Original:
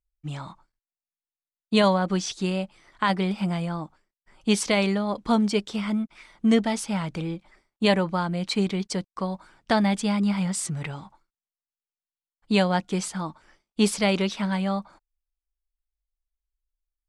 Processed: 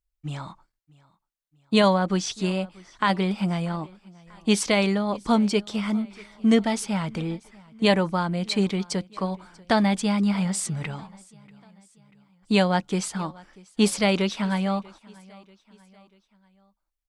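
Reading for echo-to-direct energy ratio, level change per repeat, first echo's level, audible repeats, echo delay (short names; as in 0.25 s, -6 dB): -23.0 dB, -6.0 dB, -24.0 dB, 2, 0.639 s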